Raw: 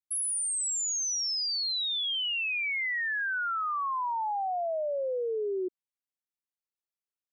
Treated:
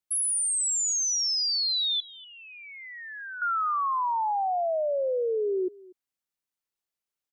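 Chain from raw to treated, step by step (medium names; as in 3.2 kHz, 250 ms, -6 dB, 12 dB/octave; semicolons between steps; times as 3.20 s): 2.00–3.42 s: Bessel low-pass 680 Hz, order 2; delay 241 ms -22 dB; trim +4 dB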